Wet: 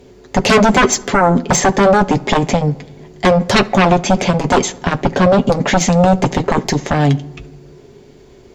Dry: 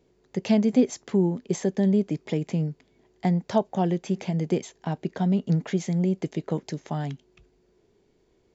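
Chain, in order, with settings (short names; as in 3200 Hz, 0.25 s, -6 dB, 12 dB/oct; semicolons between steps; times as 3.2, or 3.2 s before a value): sine folder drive 16 dB, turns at -8 dBFS; notch comb 160 Hz; darkening echo 70 ms, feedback 61%, low-pass 1900 Hz, level -21 dB; on a send at -18.5 dB: reverb RT60 1.3 s, pre-delay 7 ms; on the sum: gain +3 dB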